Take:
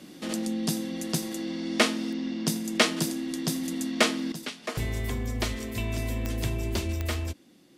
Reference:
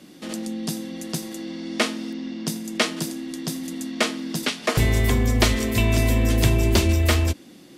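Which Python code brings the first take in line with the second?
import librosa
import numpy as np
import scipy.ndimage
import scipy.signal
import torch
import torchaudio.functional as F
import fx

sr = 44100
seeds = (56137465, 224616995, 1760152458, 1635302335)

y = fx.fix_declip(x, sr, threshold_db=-10.0)
y = fx.fix_declick_ar(y, sr, threshold=10.0)
y = fx.gain(y, sr, db=fx.steps((0.0, 0.0), (4.32, 11.0)))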